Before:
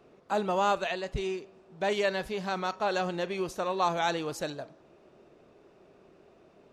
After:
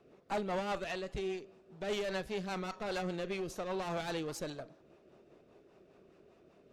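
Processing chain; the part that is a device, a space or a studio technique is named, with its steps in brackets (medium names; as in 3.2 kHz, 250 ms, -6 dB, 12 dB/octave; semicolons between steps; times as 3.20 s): overdriven rotary cabinet (valve stage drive 29 dB, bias 0.5; rotary cabinet horn 5 Hz)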